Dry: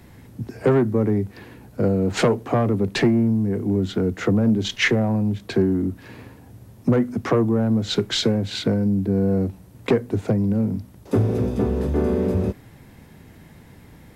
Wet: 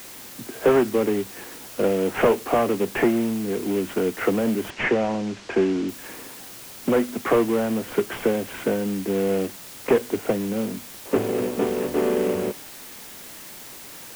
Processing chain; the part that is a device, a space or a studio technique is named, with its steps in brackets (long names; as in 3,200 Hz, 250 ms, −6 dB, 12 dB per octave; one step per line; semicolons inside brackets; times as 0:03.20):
army field radio (band-pass filter 340–2,900 Hz; variable-slope delta modulation 16 kbit/s; white noise bed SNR 17 dB)
0:04.70–0:05.89: low-pass filter 6,500 Hz 24 dB per octave
level +3.5 dB